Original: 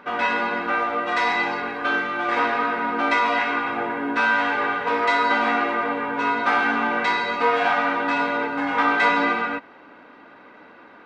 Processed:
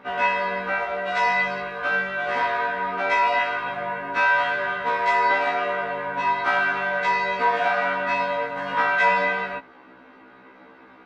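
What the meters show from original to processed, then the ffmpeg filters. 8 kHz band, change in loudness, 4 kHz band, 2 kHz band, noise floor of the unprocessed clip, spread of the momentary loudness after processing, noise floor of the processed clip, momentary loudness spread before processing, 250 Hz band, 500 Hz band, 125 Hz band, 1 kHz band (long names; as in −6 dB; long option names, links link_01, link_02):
can't be measured, −1.0 dB, −3.0 dB, −0.5 dB, −47 dBFS, 7 LU, −49 dBFS, 5 LU, −11.0 dB, −0.5 dB, +2.0 dB, −1.0 dB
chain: -af "lowshelf=frequency=190:gain=5,afftfilt=real='re*1.73*eq(mod(b,3),0)':imag='im*1.73*eq(mod(b,3),0)':win_size=2048:overlap=0.75"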